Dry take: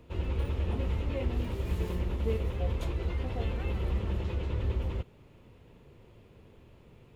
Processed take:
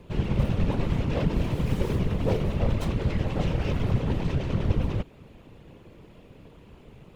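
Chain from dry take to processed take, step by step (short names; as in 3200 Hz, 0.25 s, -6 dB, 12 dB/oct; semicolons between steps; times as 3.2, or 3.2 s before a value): self-modulated delay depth 0.43 ms; whisperiser; gain +6.5 dB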